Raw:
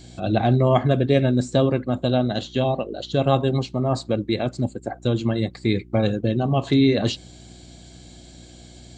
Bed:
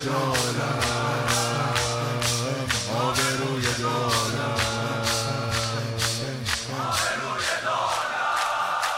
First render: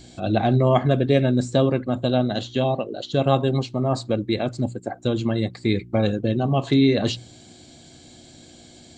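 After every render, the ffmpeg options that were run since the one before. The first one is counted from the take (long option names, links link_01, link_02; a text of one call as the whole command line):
ffmpeg -i in.wav -af "bandreject=frequency=60:width_type=h:width=4,bandreject=frequency=120:width_type=h:width=4,bandreject=frequency=180:width_type=h:width=4" out.wav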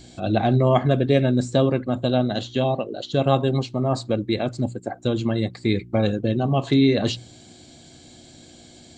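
ffmpeg -i in.wav -af anull out.wav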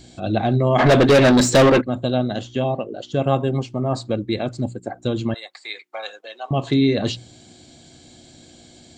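ffmpeg -i in.wav -filter_complex "[0:a]asplit=3[link_01][link_02][link_03];[link_01]afade=type=out:start_time=0.78:duration=0.02[link_04];[link_02]asplit=2[link_05][link_06];[link_06]highpass=frequency=720:poles=1,volume=29dB,asoftclip=type=tanh:threshold=-5dB[link_07];[link_05][link_07]amix=inputs=2:normalize=0,lowpass=frequency=5000:poles=1,volume=-6dB,afade=type=in:start_time=0.78:duration=0.02,afade=type=out:start_time=1.8:duration=0.02[link_08];[link_03]afade=type=in:start_time=1.8:duration=0.02[link_09];[link_04][link_08][link_09]amix=inputs=3:normalize=0,asettb=1/sr,asplit=3[link_10][link_11][link_12];[link_10]atrim=end=2.364[link_13];[link_11]atrim=start=2.36:end=3.88,asetpts=PTS-STARTPTS,afade=type=in:duration=0.004:curve=qsin,afade=type=out:start_time=1.516:duration=0.004:curve=qsin,equalizer=frequency=4000:width=5.7:gain=-13[link_14];[link_12]atrim=start=3.876[link_15];[link_13][link_14]acrossfade=duration=0.004:curve1=hsin:curve2=qsin[link_16];[link_16][link_15]acrossfade=duration=0.004:curve1=qsin:curve2=hsin,asettb=1/sr,asplit=3[link_17][link_18][link_19];[link_17]atrim=end=5.344[link_20];[link_18]atrim=start=5.34:end=6.51,asetpts=PTS-STARTPTS,afade=type=in:duration=0.004:curve=qsin,afade=type=out:start_time=1.166:duration=0.004:curve=qsin,highpass=frequency=740:width=0.5412,highpass=frequency=740:width=1.3066[link_21];[link_19]atrim=start=6.506[link_22];[link_20][link_21]acrossfade=duration=0.004:curve1=hsin:curve2=qsin[link_23];[link_23][link_22]acrossfade=duration=0.004:curve1=qsin:curve2=hsin" out.wav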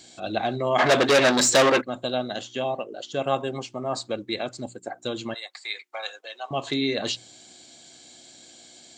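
ffmpeg -i in.wav -af "highpass=frequency=790:poles=1,equalizer=frequency=6700:width=1.5:gain=3" out.wav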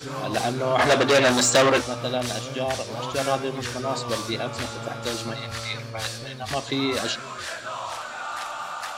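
ffmpeg -i in.wav -i bed.wav -filter_complex "[1:a]volume=-7.5dB[link_01];[0:a][link_01]amix=inputs=2:normalize=0" out.wav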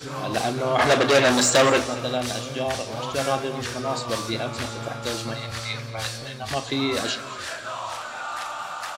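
ffmpeg -i in.wav -filter_complex "[0:a]asplit=2[link_01][link_02];[link_02]adelay=36,volume=-12.5dB[link_03];[link_01][link_03]amix=inputs=2:normalize=0,aecho=1:1:221|442|663:0.141|0.0509|0.0183" out.wav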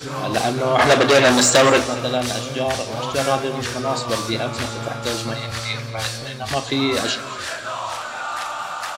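ffmpeg -i in.wav -af "volume=4.5dB,alimiter=limit=-2dB:level=0:latency=1" out.wav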